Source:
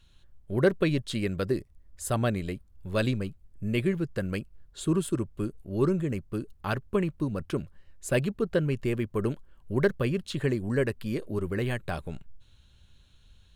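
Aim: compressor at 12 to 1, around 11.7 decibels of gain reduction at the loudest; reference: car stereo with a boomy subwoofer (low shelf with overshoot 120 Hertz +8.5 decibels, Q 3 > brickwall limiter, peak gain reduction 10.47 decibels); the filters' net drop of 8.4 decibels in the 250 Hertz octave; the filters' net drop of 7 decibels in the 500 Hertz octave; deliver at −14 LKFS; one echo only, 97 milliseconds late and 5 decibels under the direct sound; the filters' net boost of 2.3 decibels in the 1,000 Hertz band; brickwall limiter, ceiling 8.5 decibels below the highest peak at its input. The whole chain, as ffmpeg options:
ffmpeg -i in.wav -af "equalizer=frequency=250:width_type=o:gain=-6.5,equalizer=frequency=500:width_type=o:gain=-7,equalizer=frequency=1000:width_type=o:gain=5.5,acompressor=threshold=-34dB:ratio=12,alimiter=level_in=7dB:limit=-24dB:level=0:latency=1,volume=-7dB,lowshelf=frequency=120:width_type=q:width=3:gain=8.5,aecho=1:1:97:0.562,volume=26dB,alimiter=limit=-3.5dB:level=0:latency=1" out.wav

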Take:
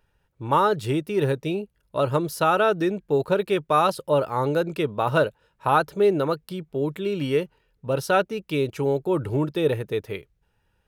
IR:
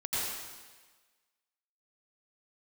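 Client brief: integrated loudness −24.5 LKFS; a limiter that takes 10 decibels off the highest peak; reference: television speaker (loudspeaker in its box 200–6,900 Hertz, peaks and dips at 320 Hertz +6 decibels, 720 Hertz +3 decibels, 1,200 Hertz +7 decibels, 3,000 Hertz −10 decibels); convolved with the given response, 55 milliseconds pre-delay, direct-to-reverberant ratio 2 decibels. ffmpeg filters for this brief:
-filter_complex "[0:a]alimiter=limit=-17dB:level=0:latency=1,asplit=2[link_01][link_02];[1:a]atrim=start_sample=2205,adelay=55[link_03];[link_02][link_03]afir=irnorm=-1:irlink=0,volume=-9dB[link_04];[link_01][link_04]amix=inputs=2:normalize=0,highpass=frequency=200:width=0.5412,highpass=frequency=200:width=1.3066,equalizer=frequency=320:width_type=q:width=4:gain=6,equalizer=frequency=720:width_type=q:width=4:gain=3,equalizer=frequency=1200:width_type=q:width=4:gain=7,equalizer=frequency=3000:width_type=q:width=4:gain=-10,lowpass=frequency=6900:width=0.5412,lowpass=frequency=6900:width=1.3066,volume=-1dB"

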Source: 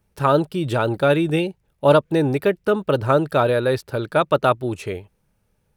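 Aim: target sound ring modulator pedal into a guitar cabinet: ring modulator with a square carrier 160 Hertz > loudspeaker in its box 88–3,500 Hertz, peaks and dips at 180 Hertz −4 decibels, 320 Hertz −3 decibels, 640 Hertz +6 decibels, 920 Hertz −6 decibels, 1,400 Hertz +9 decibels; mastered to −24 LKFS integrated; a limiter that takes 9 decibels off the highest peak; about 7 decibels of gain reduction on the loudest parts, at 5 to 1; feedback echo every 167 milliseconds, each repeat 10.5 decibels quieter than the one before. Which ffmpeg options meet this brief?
ffmpeg -i in.wav -af "acompressor=threshold=-18dB:ratio=5,alimiter=limit=-16dB:level=0:latency=1,aecho=1:1:167|334|501:0.299|0.0896|0.0269,aeval=exprs='val(0)*sgn(sin(2*PI*160*n/s))':channel_layout=same,highpass=88,equalizer=frequency=180:width_type=q:width=4:gain=-4,equalizer=frequency=320:width_type=q:width=4:gain=-3,equalizer=frequency=640:width_type=q:width=4:gain=6,equalizer=frequency=920:width_type=q:width=4:gain=-6,equalizer=frequency=1400:width_type=q:width=4:gain=9,lowpass=frequency=3500:width=0.5412,lowpass=frequency=3500:width=1.3066,volume=1dB" out.wav

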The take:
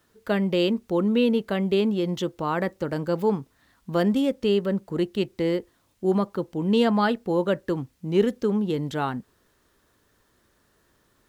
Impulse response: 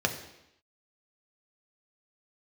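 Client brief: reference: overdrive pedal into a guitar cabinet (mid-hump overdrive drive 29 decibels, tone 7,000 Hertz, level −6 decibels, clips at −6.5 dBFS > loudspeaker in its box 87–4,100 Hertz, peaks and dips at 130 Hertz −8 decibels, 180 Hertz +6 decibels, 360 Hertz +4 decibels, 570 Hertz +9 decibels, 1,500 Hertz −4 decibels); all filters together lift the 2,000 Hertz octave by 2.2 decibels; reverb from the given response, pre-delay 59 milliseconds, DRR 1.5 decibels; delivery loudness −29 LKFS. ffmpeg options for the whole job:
-filter_complex "[0:a]equalizer=frequency=2000:width_type=o:gain=5.5,asplit=2[link_01][link_02];[1:a]atrim=start_sample=2205,adelay=59[link_03];[link_02][link_03]afir=irnorm=-1:irlink=0,volume=-11.5dB[link_04];[link_01][link_04]amix=inputs=2:normalize=0,asplit=2[link_05][link_06];[link_06]highpass=frequency=720:poles=1,volume=29dB,asoftclip=type=tanh:threshold=-6.5dB[link_07];[link_05][link_07]amix=inputs=2:normalize=0,lowpass=frequency=7000:poles=1,volume=-6dB,highpass=87,equalizer=frequency=130:width_type=q:width=4:gain=-8,equalizer=frequency=180:width_type=q:width=4:gain=6,equalizer=frequency=360:width_type=q:width=4:gain=4,equalizer=frequency=570:width_type=q:width=4:gain=9,equalizer=frequency=1500:width_type=q:width=4:gain=-4,lowpass=frequency=4100:width=0.5412,lowpass=frequency=4100:width=1.3066,volume=-18dB"

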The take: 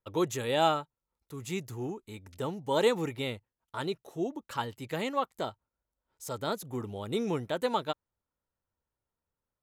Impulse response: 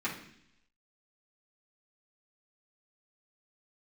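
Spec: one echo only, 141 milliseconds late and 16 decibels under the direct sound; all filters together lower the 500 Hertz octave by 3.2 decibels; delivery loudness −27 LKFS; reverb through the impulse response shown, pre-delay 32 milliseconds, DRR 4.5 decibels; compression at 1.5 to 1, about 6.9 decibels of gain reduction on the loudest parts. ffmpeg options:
-filter_complex "[0:a]equalizer=frequency=500:width_type=o:gain=-4,acompressor=threshold=-42dB:ratio=1.5,aecho=1:1:141:0.158,asplit=2[link_01][link_02];[1:a]atrim=start_sample=2205,adelay=32[link_03];[link_02][link_03]afir=irnorm=-1:irlink=0,volume=-10.5dB[link_04];[link_01][link_04]amix=inputs=2:normalize=0,volume=11.5dB"

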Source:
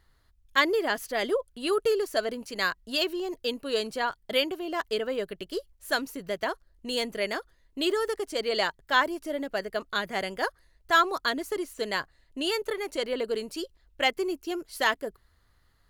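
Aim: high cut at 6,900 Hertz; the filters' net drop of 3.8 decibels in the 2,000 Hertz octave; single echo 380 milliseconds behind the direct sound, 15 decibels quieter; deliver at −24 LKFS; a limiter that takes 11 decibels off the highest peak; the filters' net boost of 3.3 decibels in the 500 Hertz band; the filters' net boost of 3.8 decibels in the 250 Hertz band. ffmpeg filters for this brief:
ffmpeg -i in.wav -af "lowpass=6900,equalizer=frequency=250:width_type=o:gain=4,equalizer=frequency=500:width_type=o:gain=3,equalizer=frequency=2000:width_type=o:gain=-5,alimiter=limit=-21.5dB:level=0:latency=1,aecho=1:1:380:0.178,volume=7.5dB" out.wav

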